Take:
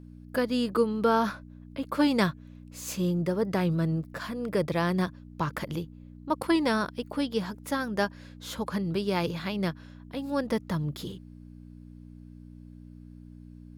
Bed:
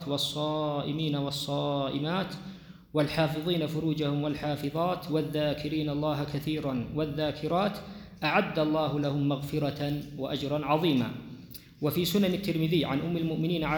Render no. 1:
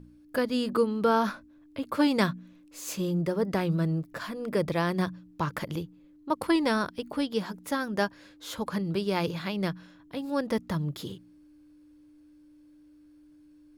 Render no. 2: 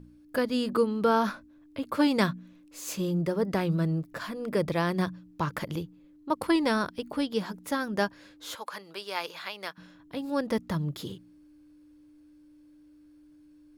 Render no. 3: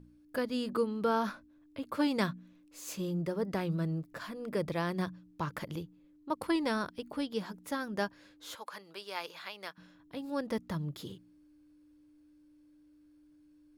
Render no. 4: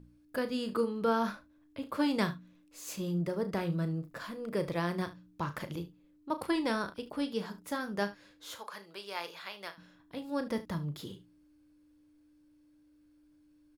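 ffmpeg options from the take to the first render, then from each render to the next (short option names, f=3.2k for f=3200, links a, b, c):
-af "bandreject=f=60:t=h:w=4,bandreject=f=120:t=h:w=4,bandreject=f=180:t=h:w=4,bandreject=f=240:t=h:w=4"
-filter_complex "[0:a]asettb=1/sr,asplit=3[a][b][c];[a]atrim=end=8.554[d];[b]atrim=start=8.55:end=9.78,asetpts=PTS-STARTPTS,afade=t=in:d=0.004:c=qsin,afade=t=out:st=1.226:d=0.004:c=qsin,highpass=770[e];[c]atrim=start=9.776[f];[d][e]acrossfade=d=0.004:c1=hsin:c2=qsin[g];[g][f]acrossfade=d=0.004:c1=qsin:c2=hsin"
-af "volume=-6dB"
-af "aecho=1:1:35|74:0.299|0.141"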